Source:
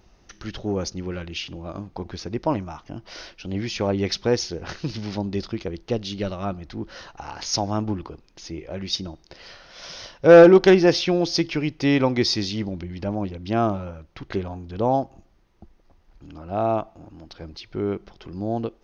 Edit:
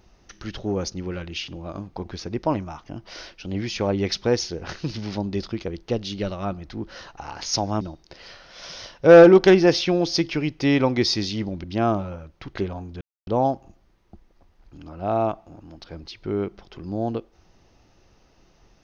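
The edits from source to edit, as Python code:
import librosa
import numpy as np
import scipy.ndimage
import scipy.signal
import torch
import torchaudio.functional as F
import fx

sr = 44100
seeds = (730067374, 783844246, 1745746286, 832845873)

y = fx.edit(x, sr, fx.cut(start_s=7.81, length_s=1.2),
    fx.cut(start_s=12.84, length_s=0.55),
    fx.insert_silence(at_s=14.76, length_s=0.26), tone=tone)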